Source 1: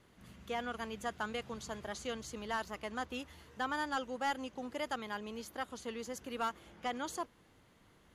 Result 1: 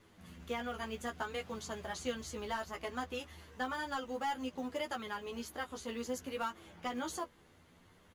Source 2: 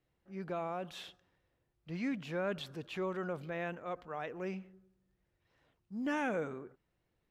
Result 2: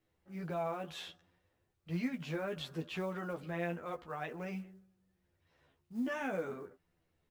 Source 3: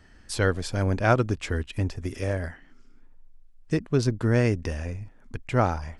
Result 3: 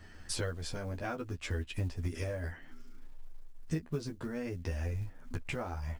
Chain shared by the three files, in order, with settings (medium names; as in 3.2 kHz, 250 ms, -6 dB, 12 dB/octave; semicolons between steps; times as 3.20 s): compression 10:1, threshold -35 dBFS; flange 0.61 Hz, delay 9 ms, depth 5.7 ms, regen -11%; short-mantissa float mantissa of 4-bit; doubling 12 ms -6 dB; trim +4 dB